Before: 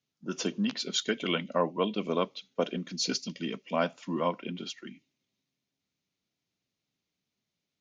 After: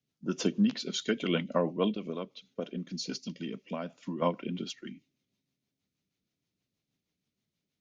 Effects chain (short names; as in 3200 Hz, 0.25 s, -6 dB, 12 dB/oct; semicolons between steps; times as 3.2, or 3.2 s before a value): low shelf 380 Hz +6 dB; 1.91–4.22 compressor 3:1, threshold -33 dBFS, peak gain reduction 10 dB; rotary speaker horn 6.3 Hz